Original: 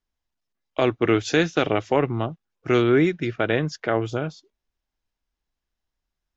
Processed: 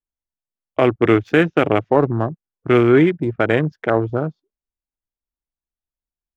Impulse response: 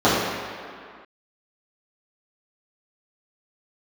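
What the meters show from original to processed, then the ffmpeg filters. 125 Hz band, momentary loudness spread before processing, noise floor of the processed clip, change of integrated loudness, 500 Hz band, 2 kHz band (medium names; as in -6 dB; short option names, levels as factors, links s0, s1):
+5.5 dB, 11 LU, under -85 dBFS, +5.0 dB, +5.5 dB, +4.0 dB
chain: -af "adynamicsmooth=sensitivity=3:basefreq=1700,afwtdn=0.0316,volume=1.88"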